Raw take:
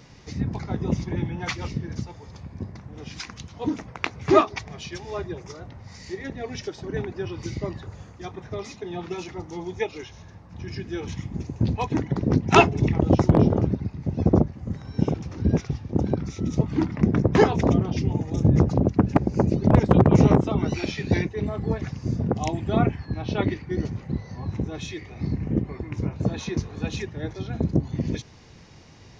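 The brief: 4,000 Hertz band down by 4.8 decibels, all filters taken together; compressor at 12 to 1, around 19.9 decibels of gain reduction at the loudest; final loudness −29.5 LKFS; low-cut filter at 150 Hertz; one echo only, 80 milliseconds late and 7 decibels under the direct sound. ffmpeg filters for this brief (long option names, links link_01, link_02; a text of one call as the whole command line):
ffmpeg -i in.wav -af "highpass=150,equalizer=frequency=4000:width_type=o:gain=-6.5,acompressor=threshold=-31dB:ratio=12,aecho=1:1:80:0.447,volume=7.5dB" out.wav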